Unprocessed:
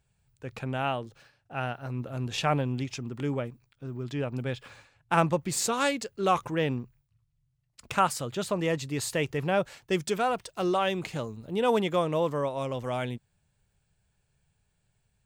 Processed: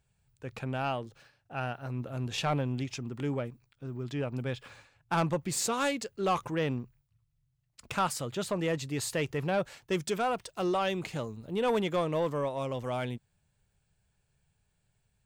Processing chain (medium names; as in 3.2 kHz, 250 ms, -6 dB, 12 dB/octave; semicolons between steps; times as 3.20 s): saturation -19 dBFS, distortion -16 dB; trim -1.5 dB